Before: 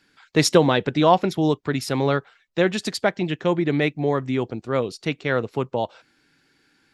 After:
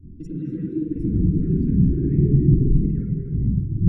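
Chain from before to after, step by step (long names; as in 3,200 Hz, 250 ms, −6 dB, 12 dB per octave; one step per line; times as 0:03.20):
wind on the microphone 270 Hz −17 dBFS
source passing by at 0:02.53, 9 m/s, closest 7.9 metres
high shelf with overshoot 7,000 Hz +7 dB, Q 1.5
hum removal 237.3 Hz, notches 11
downward compressor 2.5 to 1, threshold −24 dBFS, peak gain reduction 12.5 dB
transient designer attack +8 dB, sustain +3 dB
on a send: feedback delay with all-pass diffusion 465 ms, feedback 46%, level −5.5 dB
on the sum: sine wavefolder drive 13 dB, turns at −4.5 dBFS
phase-vocoder stretch with locked phases 0.56×
Butterworth band-reject 780 Hz, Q 0.68
spring reverb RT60 2 s, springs 45/50 ms, chirp 70 ms, DRR −4 dB
every bin expanded away from the loudest bin 2.5 to 1
level −7 dB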